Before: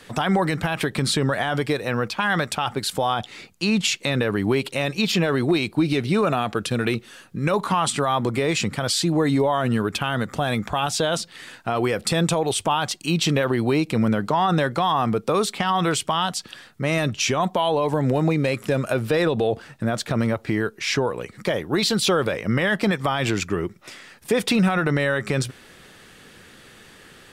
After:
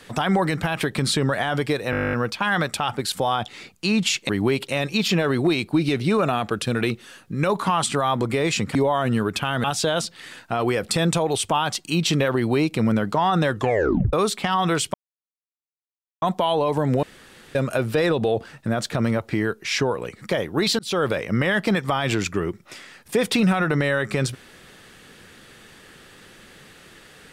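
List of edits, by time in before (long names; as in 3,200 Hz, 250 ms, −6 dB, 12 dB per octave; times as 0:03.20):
0:01.91: stutter 0.02 s, 12 plays
0:04.07–0:04.33: remove
0:08.79–0:09.34: remove
0:10.23–0:10.80: remove
0:14.65: tape stop 0.64 s
0:16.10–0:17.38: silence
0:18.19–0:18.71: fill with room tone
0:21.95–0:22.20: fade in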